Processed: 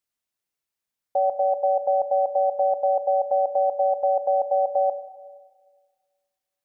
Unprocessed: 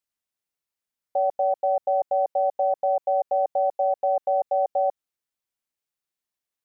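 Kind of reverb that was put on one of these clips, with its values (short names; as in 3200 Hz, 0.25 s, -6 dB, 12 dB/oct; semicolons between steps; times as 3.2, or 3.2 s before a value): Schroeder reverb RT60 1.6 s, combs from 28 ms, DRR 11 dB; gain +1.5 dB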